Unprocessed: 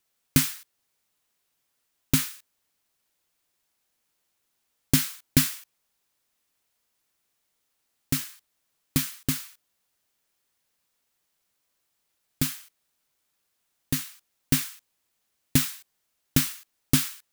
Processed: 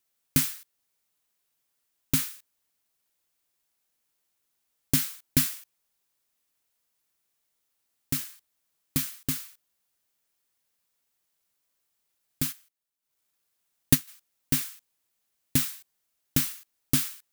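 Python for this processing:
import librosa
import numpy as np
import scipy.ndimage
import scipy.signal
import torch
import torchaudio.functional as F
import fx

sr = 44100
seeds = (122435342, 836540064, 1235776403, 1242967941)

y = fx.high_shelf(x, sr, hz=8200.0, db=5.0)
y = fx.transient(y, sr, attack_db=11, sustain_db=-11, at=(12.51, 14.07), fade=0.02)
y = y * librosa.db_to_amplitude(-4.5)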